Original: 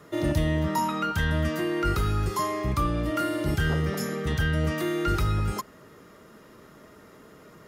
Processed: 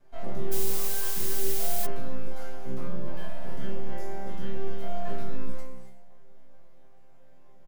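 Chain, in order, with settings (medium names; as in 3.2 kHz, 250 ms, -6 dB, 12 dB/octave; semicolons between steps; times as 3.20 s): resonant low shelf 520 Hz +9 dB, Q 1.5; full-wave rectifier; chord resonator C3 sus4, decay 0.56 s; echo from a far wall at 180 m, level -29 dB; gated-style reverb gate 310 ms rising, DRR 7 dB; 0.51–1.85 s: added noise blue -33 dBFS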